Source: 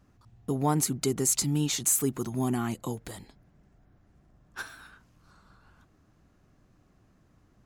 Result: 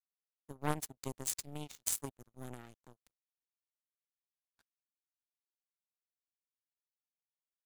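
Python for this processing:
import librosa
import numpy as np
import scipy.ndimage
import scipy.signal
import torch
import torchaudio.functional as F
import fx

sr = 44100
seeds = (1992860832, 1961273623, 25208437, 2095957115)

y = np.sign(x) * np.maximum(np.abs(x) - 10.0 ** (-40.0 / 20.0), 0.0)
y = fx.power_curve(y, sr, exponent=3.0)
y = fx.low_shelf(y, sr, hz=120.0, db=7.5)
y = y * librosa.db_to_amplitude(4.5)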